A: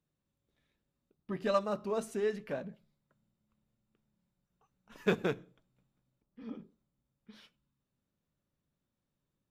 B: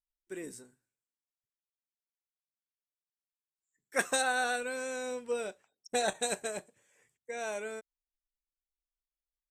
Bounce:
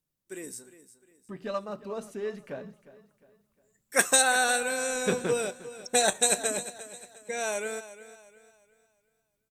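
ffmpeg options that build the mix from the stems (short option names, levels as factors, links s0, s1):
-filter_complex "[0:a]volume=0.631,asplit=2[s0][s1];[s1]volume=0.133[s2];[1:a]aemphasis=mode=production:type=cd,volume=1.12,asplit=2[s3][s4];[s4]volume=0.178[s5];[s2][s5]amix=inputs=2:normalize=0,aecho=0:1:355|710|1065|1420|1775:1|0.38|0.144|0.0549|0.0209[s6];[s0][s3][s6]amix=inputs=3:normalize=0,dynaudnorm=f=220:g=21:m=1.68"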